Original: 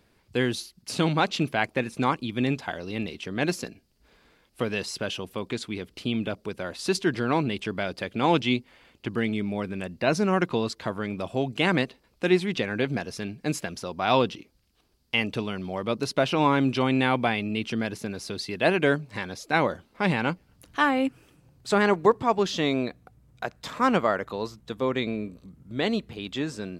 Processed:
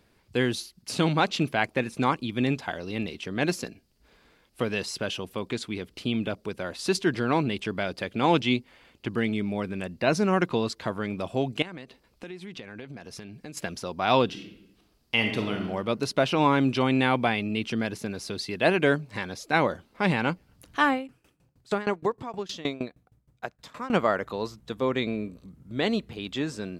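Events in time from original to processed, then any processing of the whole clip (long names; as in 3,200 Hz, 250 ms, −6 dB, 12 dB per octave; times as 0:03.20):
0:11.62–0:13.57: downward compressor 8 to 1, threshold −37 dBFS
0:14.25–0:15.60: thrown reverb, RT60 0.93 s, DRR 3 dB
0:20.93–0:23.93: tremolo with a ramp in dB decaying 6.4 Hz, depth 21 dB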